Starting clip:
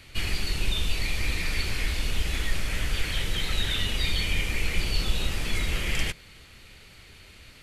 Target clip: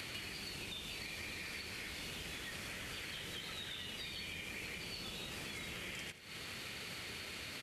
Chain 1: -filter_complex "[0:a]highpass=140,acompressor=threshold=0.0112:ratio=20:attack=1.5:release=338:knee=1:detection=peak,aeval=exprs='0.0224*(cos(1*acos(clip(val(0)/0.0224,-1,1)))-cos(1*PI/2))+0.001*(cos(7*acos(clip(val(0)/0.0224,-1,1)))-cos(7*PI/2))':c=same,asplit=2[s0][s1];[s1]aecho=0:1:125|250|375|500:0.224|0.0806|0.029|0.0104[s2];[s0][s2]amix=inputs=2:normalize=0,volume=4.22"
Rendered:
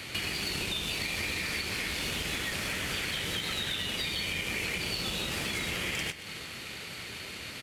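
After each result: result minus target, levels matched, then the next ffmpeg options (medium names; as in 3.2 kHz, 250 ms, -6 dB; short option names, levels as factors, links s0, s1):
echo 45 ms late; compression: peak gain reduction -10 dB
-filter_complex "[0:a]highpass=140,acompressor=threshold=0.0112:ratio=20:attack=1.5:release=338:knee=1:detection=peak,aeval=exprs='0.0224*(cos(1*acos(clip(val(0)/0.0224,-1,1)))-cos(1*PI/2))+0.001*(cos(7*acos(clip(val(0)/0.0224,-1,1)))-cos(7*PI/2))':c=same,asplit=2[s0][s1];[s1]aecho=0:1:80|160|240|320:0.224|0.0806|0.029|0.0104[s2];[s0][s2]amix=inputs=2:normalize=0,volume=4.22"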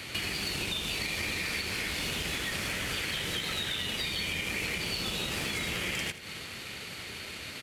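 compression: peak gain reduction -10 dB
-filter_complex "[0:a]highpass=140,acompressor=threshold=0.00335:ratio=20:attack=1.5:release=338:knee=1:detection=peak,aeval=exprs='0.0224*(cos(1*acos(clip(val(0)/0.0224,-1,1)))-cos(1*PI/2))+0.001*(cos(7*acos(clip(val(0)/0.0224,-1,1)))-cos(7*PI/2))':c=same,asplit=2[s0][s1];[s1]aecho=0:1:80|160|240|320:0.224|0.0806|0.029|0.0104[s2];[s0][s2]amix=inputs=2:normalize=0,volume=4.22"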